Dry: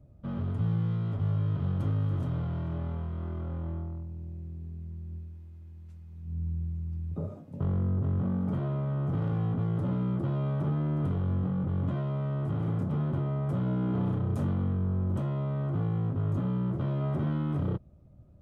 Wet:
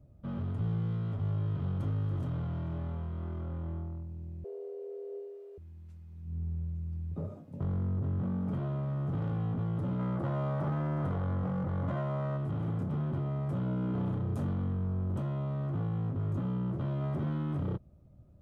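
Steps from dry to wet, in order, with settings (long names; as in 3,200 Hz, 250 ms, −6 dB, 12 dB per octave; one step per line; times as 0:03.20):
0:04.44–0:05.58: frequency shifter +320 Hz
0:09.99–0:12.37: gain on a spectral selection 470–2,300 Hz +7 dB
in parallel at −5.5 dB: gain into a clipping stage and back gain 30 dB
on the sum: level −6 dB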